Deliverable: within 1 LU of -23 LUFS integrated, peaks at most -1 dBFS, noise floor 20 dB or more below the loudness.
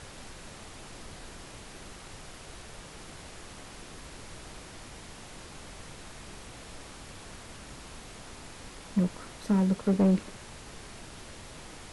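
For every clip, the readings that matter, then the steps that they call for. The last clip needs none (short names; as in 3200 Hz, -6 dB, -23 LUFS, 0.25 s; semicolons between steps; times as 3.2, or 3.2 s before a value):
clipped 0.3%; flat tops at -18.5 dBFS; noise floor -47 dBFS; noise floor target -56 dBFS; loudness -36.0 LUFS; peak -18.5 dBFS; loudness target -23.0 LUFS
-> clip repair -18.5 dBFS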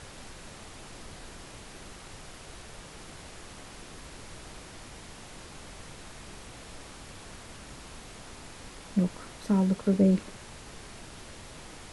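clipped 0.0%; noise floor -47 dBFS; noise floor target -48 dBFS
-> noise print and reduce 6 dB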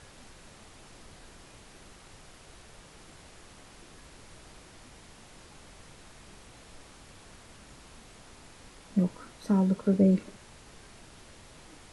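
noise floor -53 dBFS; loudness -27.0 LUFS; peak -13.0 dBFS; loudness target -23.0 LUFS
-> gain +4 dB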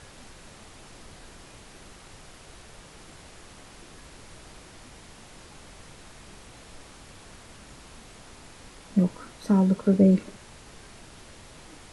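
loudness -23.0 LUFS; peak -9.0 dBFS; noise floor -49 dBFS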